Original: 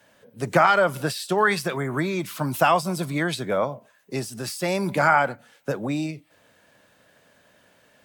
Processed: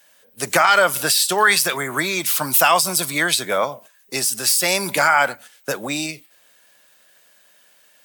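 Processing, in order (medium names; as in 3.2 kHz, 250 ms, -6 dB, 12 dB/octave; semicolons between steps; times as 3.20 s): gate -45 dBFS, range -8 dB; tilt EQ +4 dB/octave; loudness maximiser +8.5 dB; trim -3 dB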